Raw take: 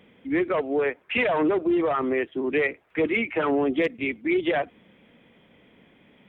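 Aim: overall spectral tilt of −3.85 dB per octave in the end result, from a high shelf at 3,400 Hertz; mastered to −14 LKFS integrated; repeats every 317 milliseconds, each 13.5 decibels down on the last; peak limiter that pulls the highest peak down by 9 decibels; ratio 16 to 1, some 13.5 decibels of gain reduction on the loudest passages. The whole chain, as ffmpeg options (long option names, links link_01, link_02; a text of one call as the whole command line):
ffmpeg -i in.wav -af "highshelf=frequency=3400:gain=-4,acompressor=threshold=-33dB:ratio=16,alimiter=level_in=7.5dB:limit=-24dB:level=0:latency=1,volume=-7.5dB,aecho=1:1:317|634:0.211|0.0444,volume=25.5dB" out.wav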